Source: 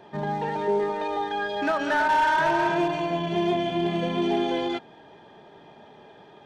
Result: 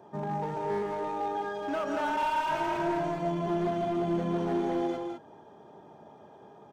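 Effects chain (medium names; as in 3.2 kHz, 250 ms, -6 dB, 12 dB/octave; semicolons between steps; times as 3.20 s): high-pass 55 Hz 24 dB/octave; high-order bell 2.8 kHz -11.5 dB; in parallel at -3 dB: peak limiter -24 dBFS, peak gain reduction 9 dB; on the sum: tempo 0.96×; hard clipper -19.5 dBFS, distortion -14 dB; on a send: loudspeakers at several distances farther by 56 m -7 dB, 70 m -7 dB; on the sum: trim -8 dB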